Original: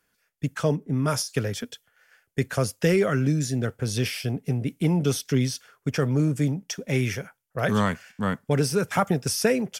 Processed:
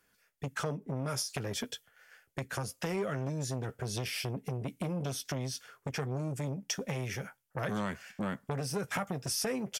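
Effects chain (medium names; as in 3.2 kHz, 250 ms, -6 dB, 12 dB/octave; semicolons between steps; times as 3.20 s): doubling 15 ms -11 dB; compression 6:1, threshold -29 dBFS, peak gain reduction 13 dB; transformer saturation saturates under 1 kHz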